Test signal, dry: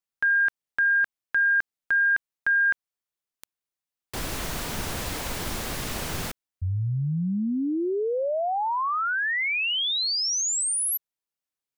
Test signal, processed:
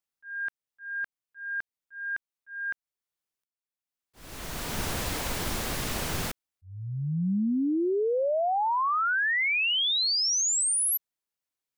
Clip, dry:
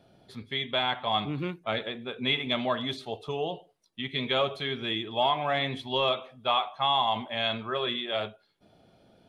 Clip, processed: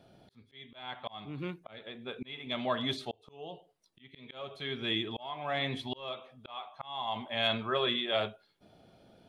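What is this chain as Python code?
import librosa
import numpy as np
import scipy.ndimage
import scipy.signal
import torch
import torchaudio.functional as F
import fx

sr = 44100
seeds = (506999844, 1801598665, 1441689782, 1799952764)

y = fx.auto_swell(x, sr, attack_ms=696.0)
y = np.clip(y, -10.0 ** (-16.5 / 20.0), 10.0 ** (-16.5 / 20.0))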